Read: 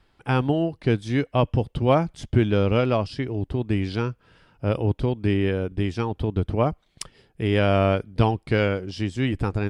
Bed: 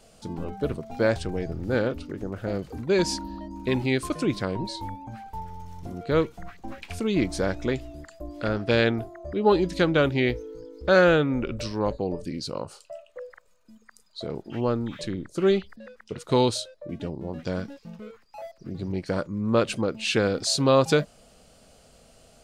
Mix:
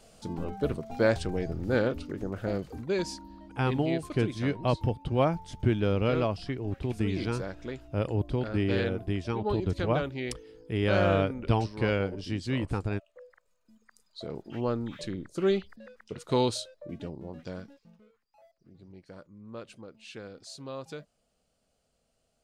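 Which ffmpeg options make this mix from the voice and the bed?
ffmpeg -i stem1.wav -i stem2.wav -filter_complex "[0:a]adelay=3300,volume=-6dB[link_01];[1:a]volume=5.5dB,afade=type=out:start_time=2.49:duration=0.67:silence=0.316228,afade=type=in:start_time=13.37:duration=1.07:silence=0.446684,afade=type=out:start_time=16.83:duration=1.26:silence=0.158489[link_02];[link_01][link_02]amix=inputs=2:normalize=0" out.wav

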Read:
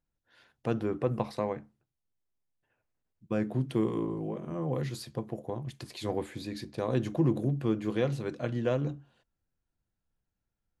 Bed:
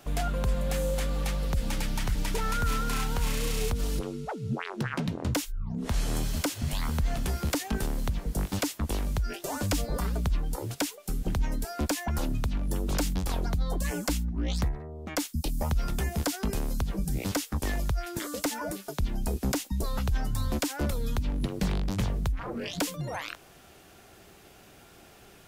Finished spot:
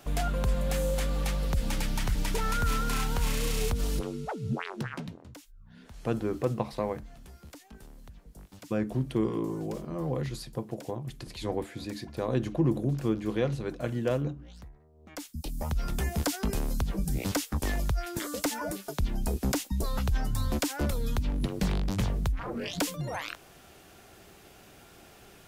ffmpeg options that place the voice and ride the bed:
ffmpeg -i stem1.wav -i stem2.wav -filter_complex "[0:a]adelay=5400,volume=0.5dB[link_01];[1:a]volume=20dB,afade=type=out:start_time=4.58:duration=0.67:silence=0.1,afade=type=in:start_time=14.93:duration=1.18:silence=0.1[link_02];[link_01][link_02]amix=inputs=2:normalize=0" out.wav

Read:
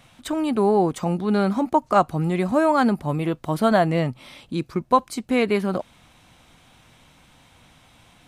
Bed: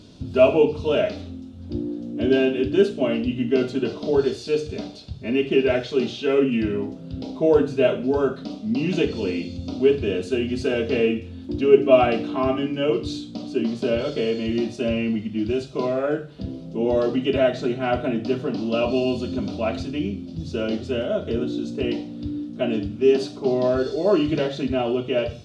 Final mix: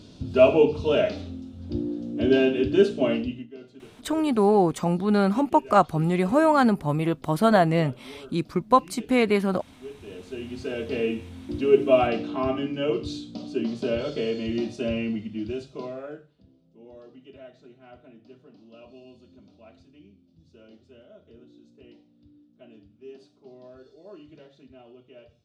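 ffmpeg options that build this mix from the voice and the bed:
ffmpeg -i stem1.wav -i stem2.wav -filter_complex "[0:a]adelay=3800,volume=-0.5dB[link_01];[1:a]volume=18dB,afade=type=out:start_time=3.11:duration=0.36:silence=0.0794328,afade=type=in:start_time=9.93:duration=1.43:silence=0.112202,afade=type=out:start_time=14.97:duration=1.45:silence=0.0749894[link_02];[link_01][link_02]amix=inputs=2:normalize=0" out.wav

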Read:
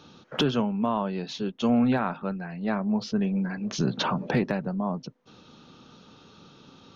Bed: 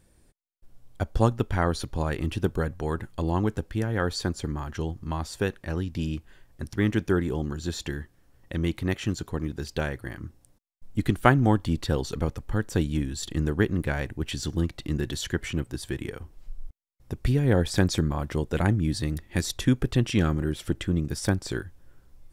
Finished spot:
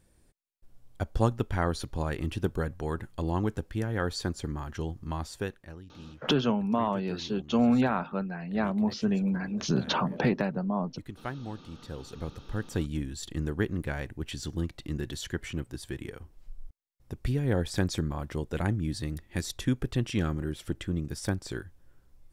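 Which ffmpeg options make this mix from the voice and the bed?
ffmpeg -i stem1.wav -i stem2.wav -filter_complex "[0:a]adelay=5900,volume=-1dB[link_01];[1:a]volume=9dB,afade=type=out:start_time=5.22:duration=0.57:silence=0.188365,afade=type=in:start_time=11.79:duration=0.9:silence=0.237137[link_02];[link_01][link_02]amix=inputs=2:normalize=0" out.wav

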